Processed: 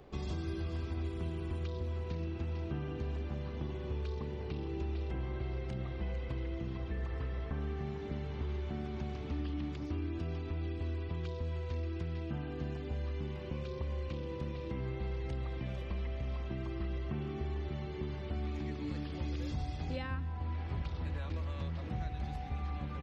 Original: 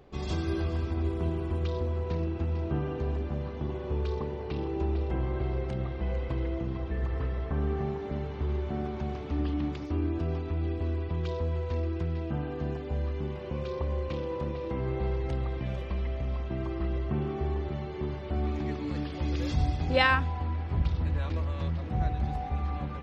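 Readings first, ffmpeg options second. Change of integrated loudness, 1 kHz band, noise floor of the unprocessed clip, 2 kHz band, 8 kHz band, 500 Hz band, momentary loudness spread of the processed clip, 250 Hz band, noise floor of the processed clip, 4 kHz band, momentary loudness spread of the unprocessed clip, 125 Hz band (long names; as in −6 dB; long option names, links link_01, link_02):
−7.5 dB, −11.0 dB, −37 dBFS, −13.0 dB, can't be measured, −9.0 dB, 2 LU, −7.0 dB, −41 dBFS, −9.5 dB, 4 LU, −6.5 dB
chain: -filter_complex "[0:a]aecho=1:1:180:0.0668,acrossover=split=320|1700[link_01][link_02][link_03];[link_01]acompressor=threshold=-36dB:ratio=4[link_04];[link_02]acompressor=threshold=-49dB:ratio=4[link_05];[link_03]acompressor=threshold=-54dB:ratio=4[link_06];[link_04][link_05][link_06]amix=inputs=3:normalize=0"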